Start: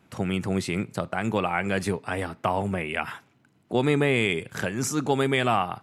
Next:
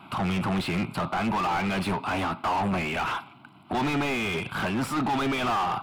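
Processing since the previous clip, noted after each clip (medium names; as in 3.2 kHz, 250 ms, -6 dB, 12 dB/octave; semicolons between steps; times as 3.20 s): static phaser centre 1.8 kHz, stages 6; overdrive pedal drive 35 dB, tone 1.4 kHz, clips at -12.5 dBFS; trim -5 dB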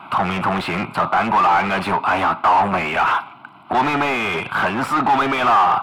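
peaking EQ 1.1 kHz +13 dB 2.7 oct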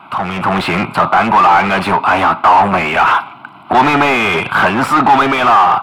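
level rider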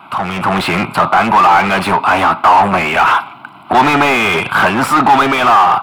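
treble shelf 6.5 kHz +8 dB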